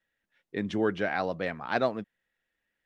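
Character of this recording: noise floor -84 dBFS; spectral tilt -4.0 dB/octave

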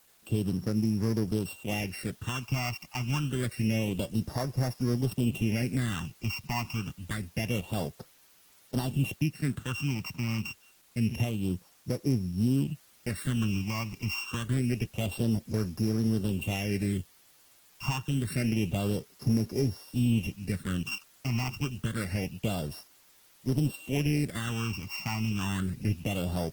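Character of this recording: a buzz of ramps at a fixed pitch in blocks of 16 samples; phasing stages 8, 0.27 Hz, lowest notch 480–2900 Hz; a quantiser's noise floor 10-bit, dither triangular; Opus

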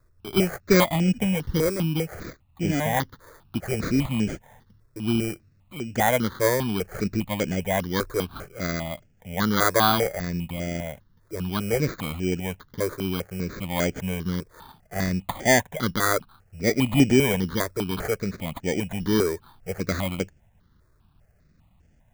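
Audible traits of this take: aliases and images of a low sample rate 2.7 kHz, jitter 0%; notches that jump at a steady rate 5 Hz 790–3900 Hz

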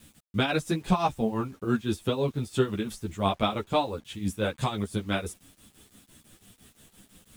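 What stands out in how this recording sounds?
tremolo triangle 5.9 Hz, depth 80%; a quantiser's noise floor 10-bit, dither none; a shimmering, thickened sound

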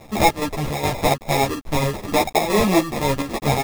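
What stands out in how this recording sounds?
aliases and images of a low sample rate 1.5 kHz, jitter 0%; chopped level 2.4 Hz, depth 60%, duty 70%; a quantiser's noise floor 8-bit, dither none; a shimmering, thickened sound

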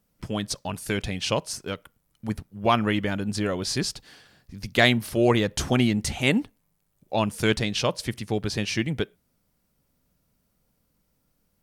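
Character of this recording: noise floor -72 dBFS; spectral tilt -4.5 dB/octave

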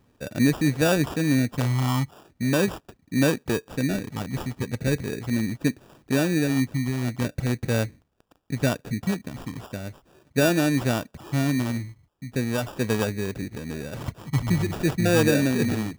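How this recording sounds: a quantiser's noise floor 12-bit, dither triangular; phasing stages 12, 0.4 Hz, lowest notch 550–4600 Hz; aliases and images of a low sample rate 2.1 kHz, jitter 0%

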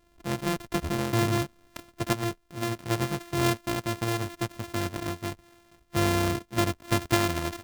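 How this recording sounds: a buzz of ramps at a fixed pitch in blocks of 128 samples; random-step tremolo 1.4 Hz; AAC

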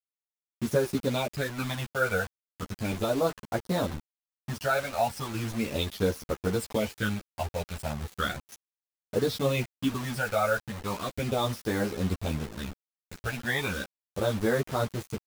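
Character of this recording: phasing stages 12, 0.36 Hz, lowest notch 320–3000 Hz; a quantiser's noise floor 6-bit, dither none; a shimmering, thickened sound

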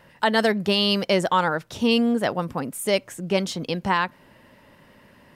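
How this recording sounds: noise floor -54 dBFS; spectral tilt -3.0 dB/octave

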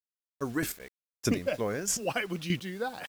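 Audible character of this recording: chopped level 1.6 Hz, depth 65%, duty 15%; a quantiser's noise floor 10-bit, dither none

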